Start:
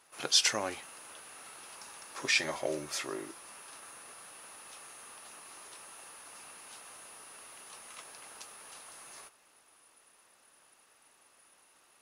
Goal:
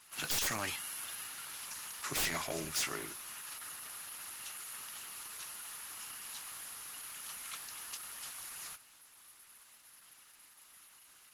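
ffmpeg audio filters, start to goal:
-filter_complex "[0:a]equalizer=f=480:w=0.69:g=-15,asetrate=46746,aresample=44100,aeval=exprs='(tanh(11.2*val(0)+0.15)-tanh(0.15))/11.2':c=same,acrossover=split=120[a][b];[b]aeval=exprs='0.02*(abs(mod(val(0)/0.02+3,4)-2)-1)':c=same[c];[a][c]amix=inputs=2:normalize=0,volume=8dB" -ar 48000 -c:a libopus -b:a 16k

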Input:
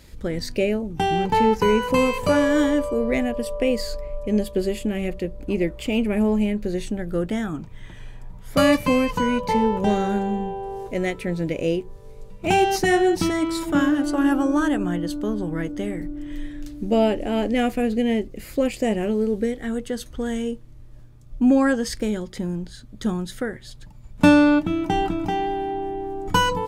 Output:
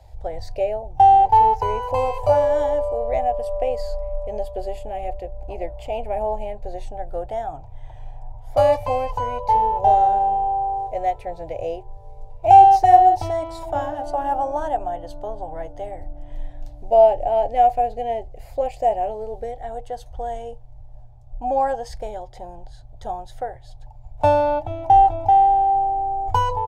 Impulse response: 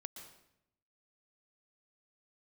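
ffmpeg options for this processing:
-filter_complex "[0:a]firequalizer=gain_entry='entry(110,0);entry(180,-30);entry(740,12);entry(1200,-15);entry(8700,-23)':delay=0.05:min_phase=1,acrossover=split=110|3800[a][b][c];[c]acontrast=38[d];[a][b][d]amix=inputs=3:normalize=0,volume=3.5dB"

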